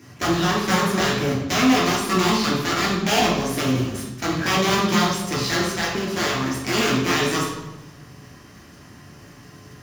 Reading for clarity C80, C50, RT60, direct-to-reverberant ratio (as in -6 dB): 5.5 dB, 2.0 dB, 1.1 s, -6.0 dB